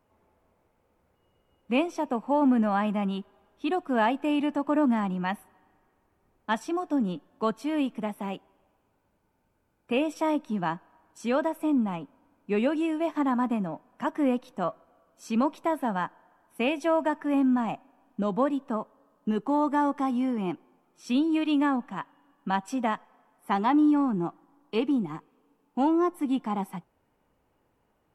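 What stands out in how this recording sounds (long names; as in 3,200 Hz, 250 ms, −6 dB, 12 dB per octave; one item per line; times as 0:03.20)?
background noise floor −71 dBFS
spectral slope −5.0 dB per octave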